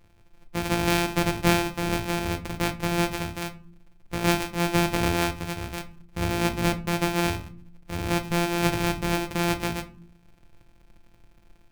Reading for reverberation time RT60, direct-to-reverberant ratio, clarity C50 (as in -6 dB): not exponential, 8.0 dB, 16.0 dB